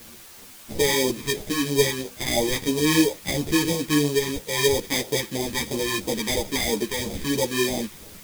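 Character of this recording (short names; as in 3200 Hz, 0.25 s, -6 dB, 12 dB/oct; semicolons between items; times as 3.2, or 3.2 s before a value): aliases and images of a low sample rate 1400 Hz, jitter 0%; phasing stages 2, 3 Hz, lowest notch 610–1400 Hz; a quantiser's noise floor 8-bit, dither triangular; a shimmering, thickened sound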